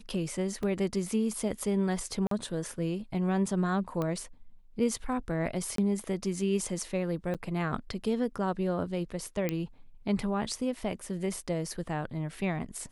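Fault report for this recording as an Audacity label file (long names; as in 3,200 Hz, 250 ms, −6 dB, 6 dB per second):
0.630000	0.630000	drop-out 3.1 ms
2.270000	2.310000	drop-out 43 ms
4.020000	4.020000	click −20 dBFS
5.760000	5.780000	drop-out 23 ms
7.340000	7.350000	drop-out 7.2 ms
9.490000	9.490000	click −16 dBFS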